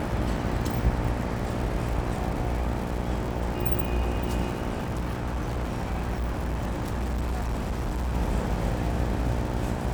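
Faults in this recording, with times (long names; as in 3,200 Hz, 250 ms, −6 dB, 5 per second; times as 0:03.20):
mains buzz 60 Hz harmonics 15 −32 dBFS
surface crackle 160 per second −33 dBFS
0:04.83–0:08.15: clipping −25 dBFS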